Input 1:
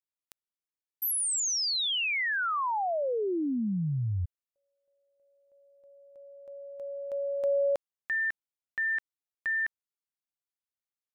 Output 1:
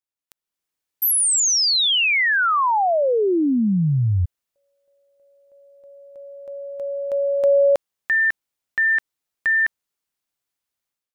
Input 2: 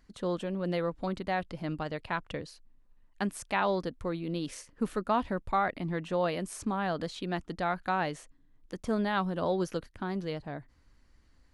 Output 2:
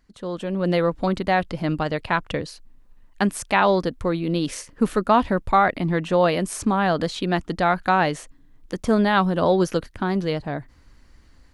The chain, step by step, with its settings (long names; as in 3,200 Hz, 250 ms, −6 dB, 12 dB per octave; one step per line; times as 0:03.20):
automatic gain control gain up to 11 dB